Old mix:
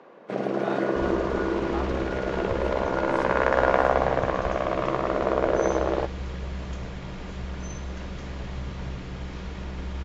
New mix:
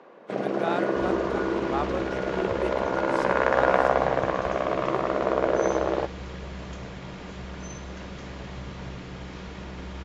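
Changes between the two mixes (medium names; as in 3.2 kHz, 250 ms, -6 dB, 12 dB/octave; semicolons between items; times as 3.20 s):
speech +6.5 dB; master: add high-pass 120 Hz 6 dB/octave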